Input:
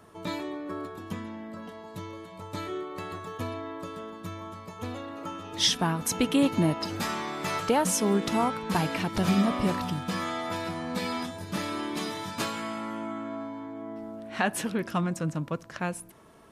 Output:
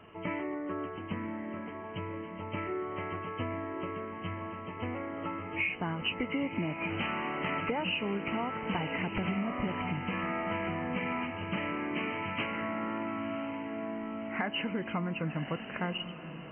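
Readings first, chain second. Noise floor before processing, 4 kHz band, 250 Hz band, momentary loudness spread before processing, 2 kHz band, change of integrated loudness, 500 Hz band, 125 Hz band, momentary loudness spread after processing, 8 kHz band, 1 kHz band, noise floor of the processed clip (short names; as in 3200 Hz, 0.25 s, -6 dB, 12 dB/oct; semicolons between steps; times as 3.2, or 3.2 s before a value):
-46 dBFS, -7.0 dB, -5.0 dB, 15 LU, +0.5 dB, -5.0 dB, -4.5 dB, -5.0 dB, 7 LU, under -40 dB, -4.5 dB, -43 dBFS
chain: nonlinear frequency compression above 1900 Hz 4:1; compressor 6:1, threshold -30 dBFS, peak gain reduction 13.5 dB; diffused feedback echo 1.065 s, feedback 42%, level -10 dB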